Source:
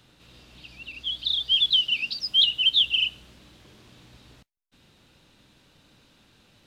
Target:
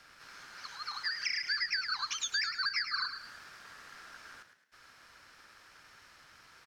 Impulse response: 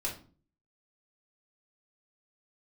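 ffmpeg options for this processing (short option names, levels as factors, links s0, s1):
-filter_complex "[0:a]aeval=exprs='val(0)*sin(2*PI*1500*n/s)':c=same,acrossover=split=260[s0][s1];[s1]acompressor=threshold=0.0178:ratio=5[s2];[s0][s2]amix=inputs=2:normalize=0,asplit=5[s3][s4][s5][s6][s7];[s4]adelay=107,afreqshift=64,volume=0.355[s8];[s5]adelay=214,afreqshift=128,volume=0.135[s9];[s6]adelay=321,afreqshift=192,volume=0.0513[s10];[s7]adelay=428,afreqshift=256,volume=0.0195[s11];[s3][s8][s9][s10][s11]amix=inputs=5:normalize=0,volume=1.41"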